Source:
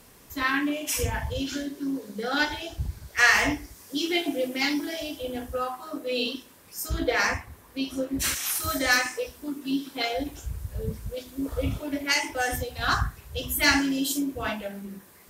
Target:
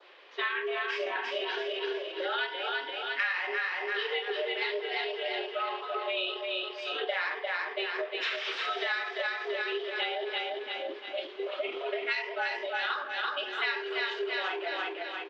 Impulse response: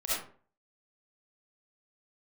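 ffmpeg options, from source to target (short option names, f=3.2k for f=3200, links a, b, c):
-filter_complex "[0:a]aecho=1:1:342|684|1026|1368|1710|2052:0.562|0.259|0.119|0.0547|0.0252|0.0116,highpass=f=250:t=q:w=0.5412,highpass=f=250:t=q:w=1.307,lowpass=f=3.6k:t=q:w=0.5176,lowpass=f=3.6k:t=q:w=0.7071,lowpass=f=3.6k:t=q:w=1.932,afreqshift=170,acrossover=split=650[a][b];[a]asplit=2[c][d];[d]adelay=17,volume=-10dB[e];[c][e]amix=inputs=2:normalize=0[f];[b]crystalizer=i=5:c=0[g];[f][g]amix=inputs=2:normalize=0,adynamicequalizer=threshold=0.02:dfrequency=2900:dqfactor=1.5:tfrequency=2900:tqfactor=1.5:attack=5:release=100:ratio=0.375:range=3:mode=cutabove:tftype=bell,asetrate=39289,aresample=44100,atempo=1.12246,acompressor=threshold=-28dB:ratio=6,volume=-1dB"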